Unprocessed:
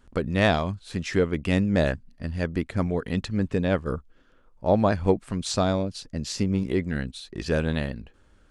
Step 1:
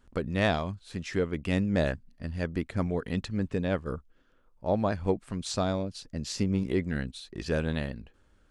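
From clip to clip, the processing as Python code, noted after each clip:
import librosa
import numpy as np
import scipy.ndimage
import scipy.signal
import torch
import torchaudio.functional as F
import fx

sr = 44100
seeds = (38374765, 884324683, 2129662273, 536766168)

y = fx.rider(x, sr, range_db=10, speed_s=2.0)
y = y * librosa.db_to_amplitude(-5.5)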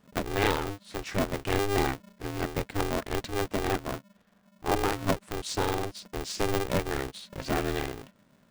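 y = x * np.sign(np.sin(2.0 * np.pi * 200.0 * np.arange(len(x)) / sr))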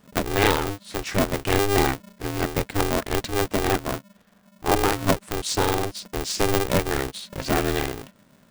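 y = fx.high_shelf(x, sr, hz=6200.0, db=5.0)
y = y * librosa.db_to_amplitude(6.0)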